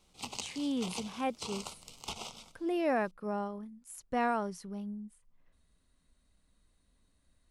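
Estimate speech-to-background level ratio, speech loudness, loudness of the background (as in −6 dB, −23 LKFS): 8.0 dB, −35.5 LKFS, −43.5 LKFS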